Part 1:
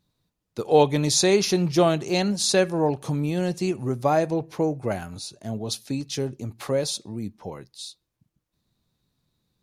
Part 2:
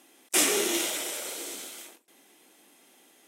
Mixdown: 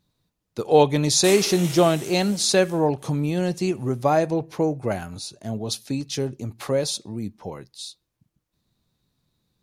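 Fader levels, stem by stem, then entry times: +1.5 dB, -6.5 dB; 0.00 s, 0.90 s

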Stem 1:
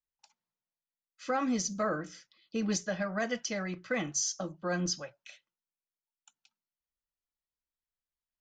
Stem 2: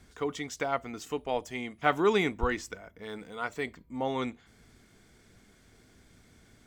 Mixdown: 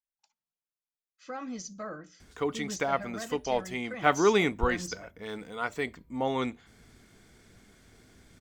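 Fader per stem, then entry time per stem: -8.0 dB, +2.0 dB; 0.00 s, 2.20 s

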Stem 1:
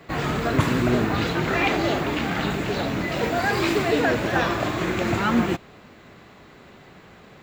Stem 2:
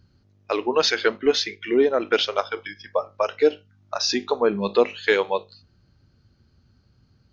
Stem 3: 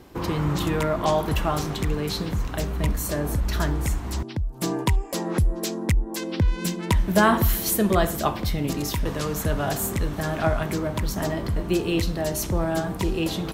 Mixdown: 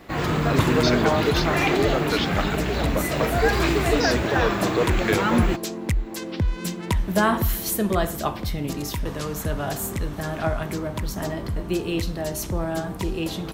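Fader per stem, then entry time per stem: -0.5 dB, -5.5 dB, -2.0 dB; 0.00 s, 0.00 s, 0.00 s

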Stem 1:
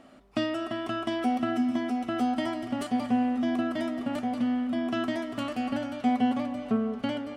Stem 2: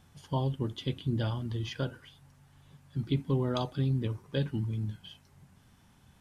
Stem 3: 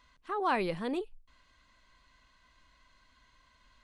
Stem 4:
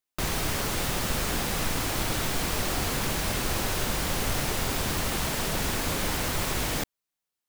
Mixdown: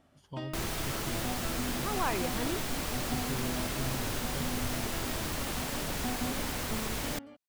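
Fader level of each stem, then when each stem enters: -13.0 dB, -11.0 dB, -3.0 dB, -6.5 dB; 0.00 s, 0.00 s, 1.55 s, 0.35 s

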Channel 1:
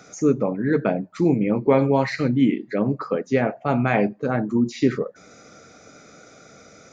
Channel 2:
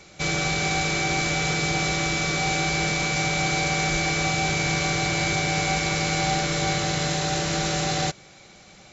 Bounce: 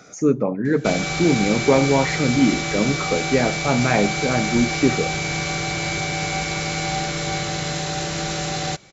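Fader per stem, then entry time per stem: +1.0 dB, -0.5 dB; 0.00 s, 0.65 s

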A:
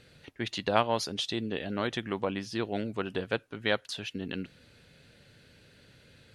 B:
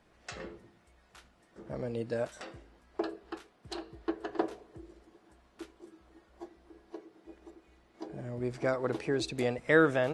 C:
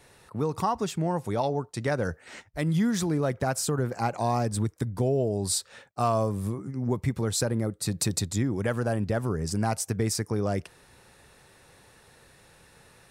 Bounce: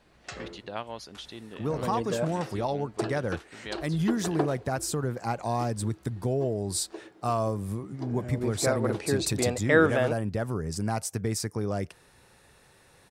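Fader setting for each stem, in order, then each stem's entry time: -10.5 dB, +3.0 dB, -2.5 dB; 0.00 s, 0.00 s, 1.25 s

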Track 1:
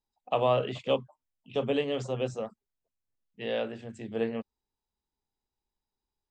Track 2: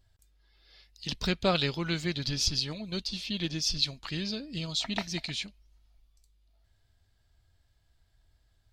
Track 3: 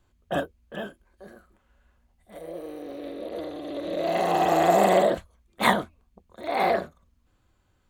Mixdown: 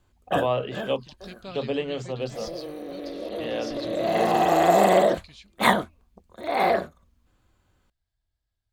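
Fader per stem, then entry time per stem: +0.5 dB, -14.0 dB, +1.5 dB; 0.00 s, 0.00 s, 0.00 s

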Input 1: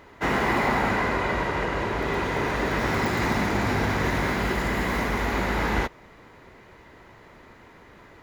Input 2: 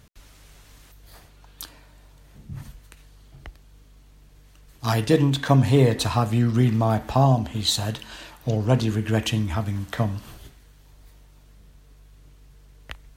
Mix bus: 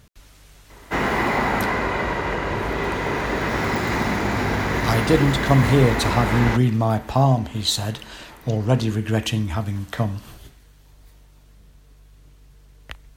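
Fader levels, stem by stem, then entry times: +2.0 dB, +1.0 dB; 0.70 s, 0.00 s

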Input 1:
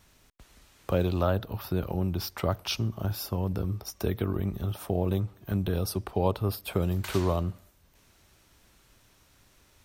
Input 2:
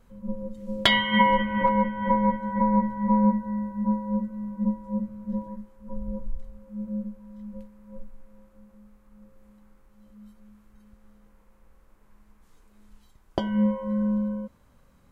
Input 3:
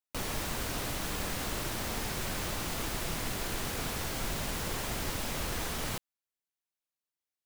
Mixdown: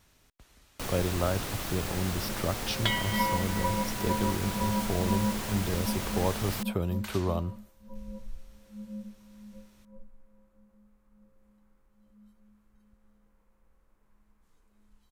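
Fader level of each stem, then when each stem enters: -3.0 dB, -9.0 dB, -0.5 dB; 0.00 s, 2.00 s, 0.65 s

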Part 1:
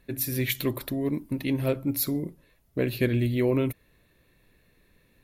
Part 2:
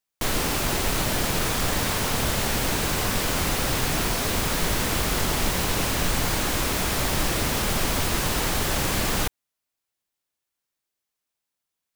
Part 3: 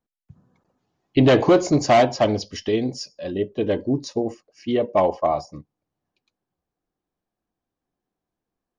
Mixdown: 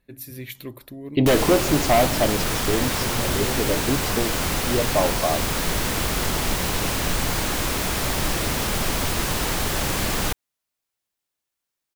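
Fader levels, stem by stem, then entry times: -8.5 dB, +0.5 dB, -3.0 dB; 0.00 s, 1.05 s, 0.00 s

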